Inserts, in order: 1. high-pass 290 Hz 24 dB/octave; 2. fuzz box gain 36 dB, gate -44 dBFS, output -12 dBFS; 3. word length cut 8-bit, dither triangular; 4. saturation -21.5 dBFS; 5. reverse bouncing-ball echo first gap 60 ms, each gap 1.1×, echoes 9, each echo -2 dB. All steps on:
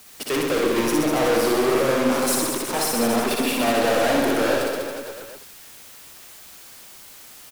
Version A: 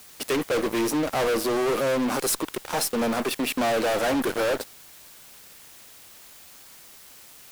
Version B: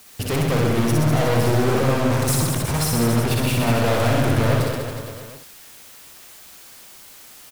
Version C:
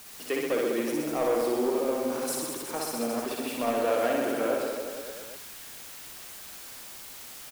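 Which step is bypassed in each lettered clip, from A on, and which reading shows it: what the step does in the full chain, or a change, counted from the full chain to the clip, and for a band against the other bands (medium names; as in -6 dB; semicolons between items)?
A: 5, momentary loudness spread change -14 LU; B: 1, 125 Hz band +19.0 dB; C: 2, distortion -4 dB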